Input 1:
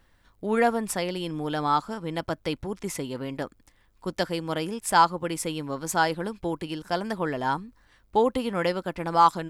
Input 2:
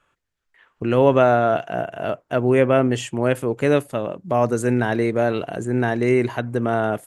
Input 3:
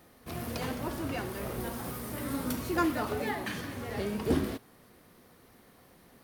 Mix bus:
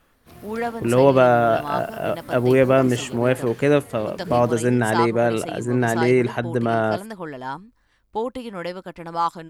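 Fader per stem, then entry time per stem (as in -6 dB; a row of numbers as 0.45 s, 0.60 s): -4.0 dB, +0.5 dB, -7.0 dB; 0.00 s, 0.00 s, 0.00 s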